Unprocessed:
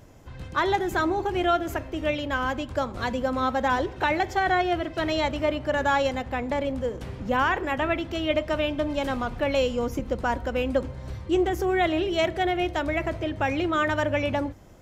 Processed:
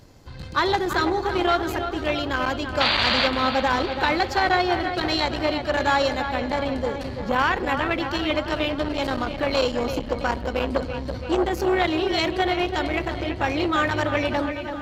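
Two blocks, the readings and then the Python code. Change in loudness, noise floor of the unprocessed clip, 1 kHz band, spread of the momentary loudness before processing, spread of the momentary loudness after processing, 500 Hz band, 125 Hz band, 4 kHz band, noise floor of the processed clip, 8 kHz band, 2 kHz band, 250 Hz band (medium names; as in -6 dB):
+2.5 dB, -41 dBFS, +2.5 dB, 6 LU, 6 LU, +1.5 dB, +2.0 dB, +8.0 dB, -33 dBFS, +3.5 dB, +3.5 dB, +2.0 dB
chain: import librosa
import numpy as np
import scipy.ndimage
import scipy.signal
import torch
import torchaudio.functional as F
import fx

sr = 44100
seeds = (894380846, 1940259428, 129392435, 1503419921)

p1 = fx.peak_eq(x, sr, hz=4400.0, db=13.0, octaves=0.36)
p2 = fx.notch(p1, sr, hz=640.0, q=12.0)
p3 = np.sign(p2) * np.maximum(np.abs(p2) - 10.0 ** (-45.0 / 20.0), 0.0)
p4 = p2 + F.gain(torch.from_numpy(p3), -5.5).numpy()
p5 = fx.spec_paint(p4, sr, seeds[0], shape='noise', start_s=2.8, length_s=0.48, low_hz=540.0, high_hz=4800.0, level_db=-20.0)
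p6 = fx.echo_wet_lowpass(p5, sr, ms=334, feedback_pct=60, hz=3800.0, wet_db=-9.0)
y = fx.transformer_sat(p6, sr, knee_hz=900.0)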